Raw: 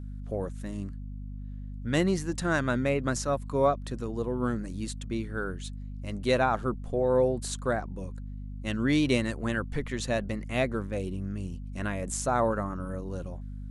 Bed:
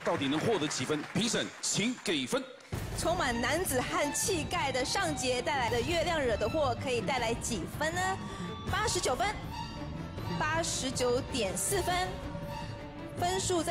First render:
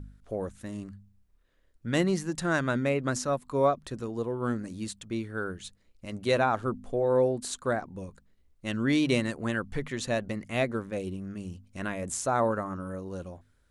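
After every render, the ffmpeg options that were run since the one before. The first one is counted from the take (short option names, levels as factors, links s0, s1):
-af "bandreject=f=50:t=h:w=4,bandreject=f=100:t=h:w=4,bandreject=f=150:t=h:w=4,bandreject=f=200:t=h:w=4,bandreject=f=250:t=h:w=4"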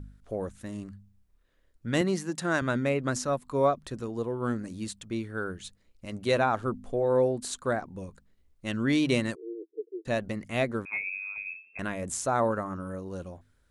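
-filter_complex "[0:a]asettb=1/sr,asplit=3[s0][s1][s2];[s0]atrim=end=2.014[s3];[s1]atrim=start=2.01:end=2.62,asetpts=PTS-STARTPTS,afade=t=in:d=0.004:c=qsin,afade=t=out:st=0.606:d=0.004:c=qsin,highpass=160[s4];[s2]atrim=start=2.616[s5];[s3][s4]acrossfade=d=0.004:c1=hsin:c2=qsin[s6];[s6][s5]acrossfade=d=0.004:c1=qsin:c2=hsin,asplit=3[s7][s8][s9];[s7]afade=t=out:st=9.34:d=0.02[s10];[s8]asuperpass=centerf=390:order=12:qfactor=2.5,afade=t=in:st=9.34:d=0.02,afade=t=out:st=10.05:d=0.02[s11];[s9]afade=t=in:st=10.05:d=0.02[s12];[s10][s11][s12]amix=inputs=3:normalize=0,asettb=1/sr,asplit=3[s13][s14][s15];[s13]atrim=end=10.854[s16];[s14]atrim=start=10.85:end=11.79,asetpts=PTS-STARTPTS,afade=t=in:d=0.004:c=qsin,afade=t=out:st=0.936:d=0.004:c=qsin,lowpass=f=2300:t=q:w=0.5098,lowpass=f=2300:t=q:w=0.6013,lowpass=f=2300:t=q:w=0.9,lowpass=f=2300:t=q:w=2.563,afreqshift=-2700[s17];[s15]atrim=start=11.786[s18];[s16][s17]acrossfade=d=0.004:c1=hsin:c2=qsin[s19];[s19][s18]acrossfade=d=0.004:c1=qsin:c2=hsin"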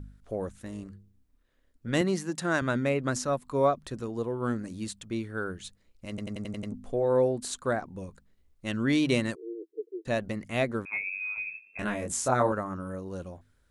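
-filter_complex "[0:a]asettb=1/sr,asplit=3[s0][s1][s2];[s0]atrim=end=0.594[s3];[s1]atrim=start=0.59:end=1.93,asetpts=PTS-STARTPTS,afade=t=in:d=0.004:c=qsin,afade=t=out:st=1.336:d=0.004:c=qsin,tremolo=f=260:d=0.333[s4];[s2]atrim=start=1.926[s5];[s3][s4]acrossfade=d=0.004:c1=hsin:c2=qsin[s6];[s6][s5]acrossfade=d=0.004:c1=qsin:c2=hsin,asettb=1/sr,asplit=3[s7][s8][s9];[s7]atrim=end=11.184[s10];[s8]atrim=start=11.18:end=12.52,asetpts=PTS-STARTPTS,afade=t=in:d=0.004:c=qsin,afade=t=out:st=1.336:d=0.004:c=qsin,asplit=2[s11][s12];[s12]adelay=24,volume=0.75[s13];[s11][s13]amix=inputs=2:normalize=0,atrim=end_sample=59094[s14];[s9]atrim=start=12.516[s15];[s10][s14]acrossfade=d=0.004:c1=hsin:c2=qsin[s16];[s16][s15]acrossfade=d=0.004:c1=qsin:c2=hsin,asplit=8[s17][s18][s19][s20][s21][s22][s23][s24];[s17]atrim=end=6.182[s25];[s18]atrim=start=6.088:end=6.182[s26];[s19]atrim=start=6.088:end=6.182[s27];[s20]atrim=start=6.088:end=6.182[s28];[s21]atrim=start=6.088:end=6.182[s29];[s22]atrim=start=6.088:end=6.182[s30];[s23]atrim=start=6.088:end=6.182[s31];[s24]atrim=start=6.718[s32];[s25][s26]acrossfade=d=0.004:c1=hsin:c2=hsin[s33];[s33][s27]acrossfade=d=0.004:c1=hsin:c2=hsin[s34];[s34][s28]acrossfade=d=0.004:c1=hsin:c2=hsin[s35];[s35][s29]acrossfade=d=0.004:c1=hsin:c2=hsin[s36];[s36][s30]acrossfade=d=0.004:c1=hsin:c2=hsin[s37];[s37][s31]acrossfade=d=0.004:c1=hsin:c2=hsin[s38];[s38][s32]acrossfade=d=0.004:c1=hsin:c2=hsin"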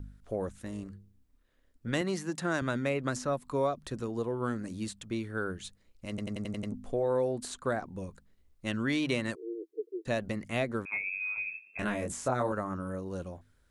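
-filter_complex "[0:a]acrossover=split=600|2900[s0][s1][s2];[s0]acompressor=threshold=0.0316:ratio=4[s3];[s1]acompressor=threshold=0.0251:ratio=4[s4];[s2]acompressor=threshold=0.00891:ratio=4[s5];[s3][s4][s5]amix=inputs=3:normalize=0"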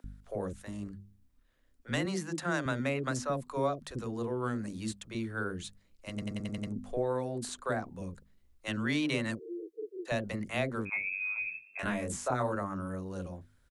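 -filter_complex "[0:a]acrossover=split=440[s0][s1];[s0]adelay=40[s2];[s2][s1]amix=inputs=2:normalize=0"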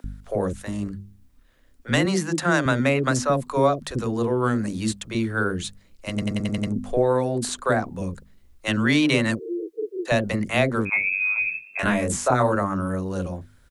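-af "volume=3.76"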